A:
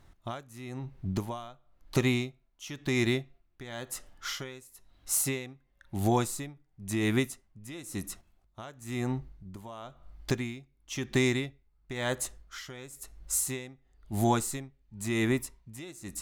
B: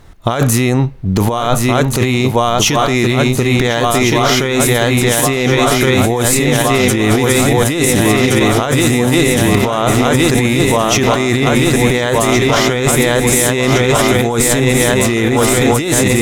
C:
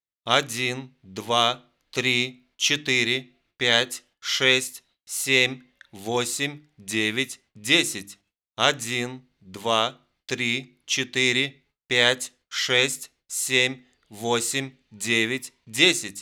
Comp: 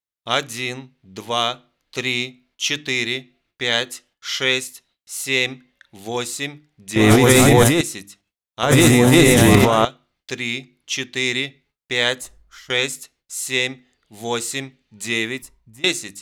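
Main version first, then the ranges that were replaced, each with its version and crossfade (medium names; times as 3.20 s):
C
6.96–7.81 s: from B
8.63–9.85 s: from B
12.21–12.70 s: from A
15.42–15.84 s: from A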